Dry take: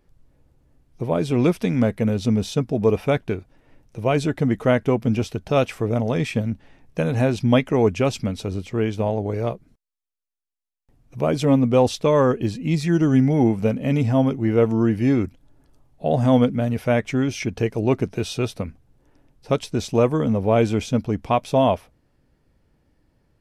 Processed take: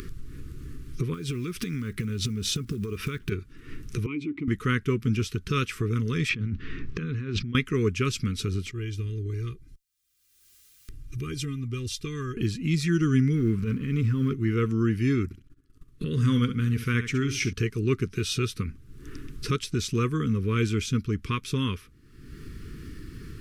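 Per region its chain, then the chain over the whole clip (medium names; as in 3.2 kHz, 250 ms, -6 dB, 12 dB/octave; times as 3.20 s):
1.14–3.32 s: block-companded coder 7-bit + compression 12:1, threshold -26 dBFS
4.06–4.48 s: vowel filter u + treble shelf 3.7 kHz -6.5 dB + level flattener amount 50%
6.29–7.55 s: compressor with a negative ratio -31 dBFS + distance through air 180 m
8.71–12.37 s: amplifier tone stack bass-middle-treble 6-0-2 + comb 2.5 ms
13.35–14.34 s: companding laws mixed up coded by A + treble shelf 3.3 kHz -11 dB + transient shaper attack -11 dB, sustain +5 dB
15.24–17.53 s: gate -50 dBFS, range -26 dB + feedback delay 67 ms, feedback 18%, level -11 dB
whole clip: upward compressor, threshold -19 dBFS; Chebyshev band-stop 410–1200 Hz, order 3; dynamic bell 290 Hz, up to -6 dB, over -33 dBFS, Q 0.79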